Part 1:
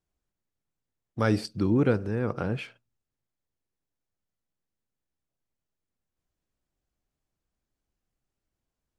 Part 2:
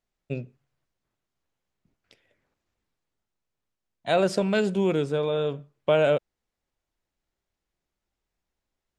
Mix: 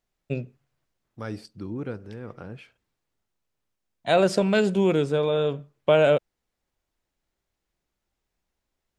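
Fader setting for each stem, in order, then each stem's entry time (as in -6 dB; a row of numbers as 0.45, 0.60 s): -10.0, +2.5 dB; 0.00, 0.00 s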